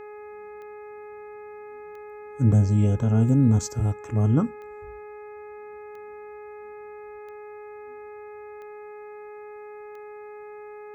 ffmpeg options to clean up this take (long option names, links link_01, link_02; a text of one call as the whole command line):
ffmpeg -i in.wav -af "adeclick=threshold=4,bandreject=frequency=419.2:width_type=h:width=4,bandreject=frequency=838.4:width_type=h:width=4,bandreject=frequency=1257.6:width_type=h:width=4,bandreject=frequency=1676.8:width_type=h:width=4,bandreject=frequency=2096:width_type=h:width=4,bandreject=frequency=2515.2:width_type=h:width=4" out.wav